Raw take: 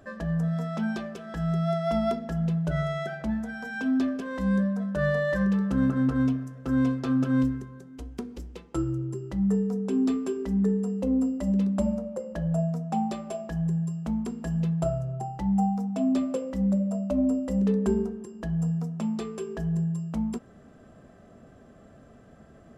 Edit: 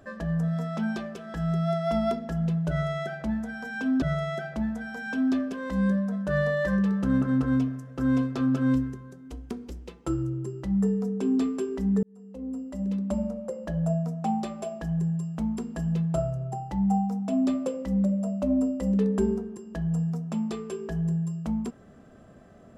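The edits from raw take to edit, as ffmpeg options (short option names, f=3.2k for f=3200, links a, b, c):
-filter_complex "[0:a]asplit=3[a][b][c];[a]atrim=end=4.022[d];[b]atrim=start=2.698:end=10.71,asetpts=PTS-STARTPTS,afade=t=out:st=8.008:d=0.004:c=hsin[e];[c]atrim=start=10.71,asetpts=PTS-STARTPTS,afade=t=in:d=1.47[f];[e][f]concat=n=2:v=0:a=1[g];[d][g]acrossfade=d=0.004:c1=hsin:c2=hsin"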